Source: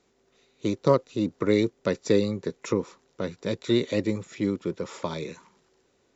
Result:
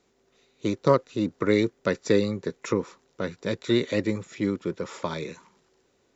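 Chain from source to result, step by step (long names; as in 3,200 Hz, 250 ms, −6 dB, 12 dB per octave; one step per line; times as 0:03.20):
dynamic equaliser 1,600 Hz, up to +6 dB, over −47 dBFS, Q 1.6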